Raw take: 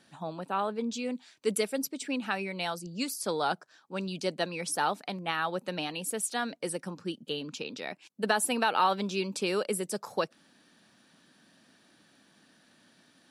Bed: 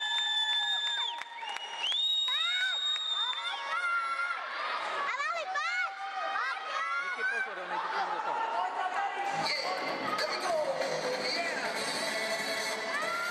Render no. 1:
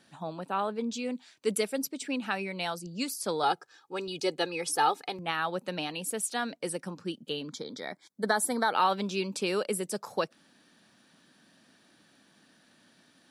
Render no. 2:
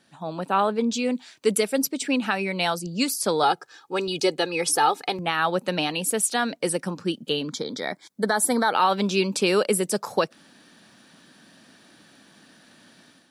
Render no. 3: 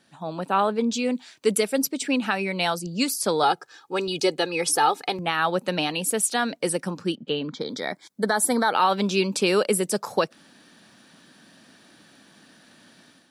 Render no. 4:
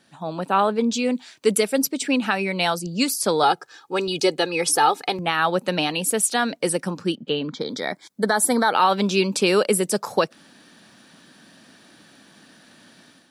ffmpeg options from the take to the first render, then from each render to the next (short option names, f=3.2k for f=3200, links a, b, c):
-filter_complex "[0:a]asettb=1/sr,asplit=3[a][b][c];[a]atrim=end=3.434[d];[b]atrim=start=3.43:end=5.19,asetpts=PTS-STARTPTS,afade=t=in:d=0.004:c=qsin,afade=t=out:st=1.756:d=0.004:c=qsin,aecho=1:1:2.4:0.82,atrim=end_sample=77616[e];[c]atrim=start=5.186[f];[d][e]acrossfade=d=0.004:c1=hsin:c2=qsin[g];[g][f]acrossfade=d=0.004:c1=qsin:c2=hsin,asettb=1/sr,asplit=3[h][i][j];[h]atrim=end=7.494[k];[i]atrim=start=7.49:end=8.73,asetpts=PTS-STARTPTS,afade=t=in:d=0.004:c=qsin,afade=t=out:st=1.236:d=0.004:c=qsin,asuperstop=centerf=2700:order=8:qfactor=2.9[l];[j]atrim=start=8.726[m];[k][l]acrossfade=d=0.004:c1=hsin:c2=qsin[n];[n][m]acrossfade=d=0.004:c1=qsin:c2=hsin"
-af "alimiter=limit=-18.5dB:level=0:latency=1:release=185,dynaudnorm=f=190:g=3:m=9dB"
-filter_complex "[0:a]asettb=1/sr,asplit=3[a][b][c];[a]atrim=end=7.154[d];[b]atrim=start=7.15:end=7.61,asetpts=PTS-STARTPTS,afade=t=in:d=0.004:c=qsin,afade=t=out:st=0.456:d=0.004:c=qsin,lowpass=3k[e];[c]atrim=start=7.606[f];[d][e]acrossfade=d=0.004:c1=hsin:c2=qsin[g];[g][f]acrossfade=d=0.004:c1=qsin:c2=hsin"
-af "volume=2.5dB"